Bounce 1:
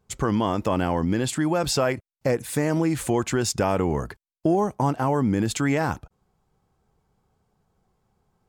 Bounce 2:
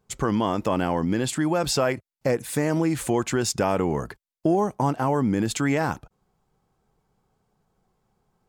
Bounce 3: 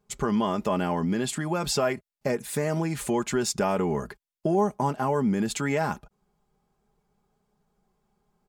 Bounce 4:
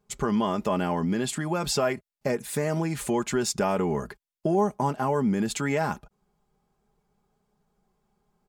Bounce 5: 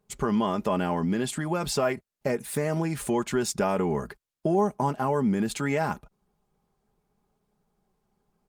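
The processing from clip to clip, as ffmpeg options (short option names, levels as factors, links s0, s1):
-af "equalizer=f=75:t=o:w=0.78:g=-7.5"
-af "aecho=1:1:4.9:0.57,volume=0.668"
-af anull
-ar 48000 -c:a libopus -b:a 32k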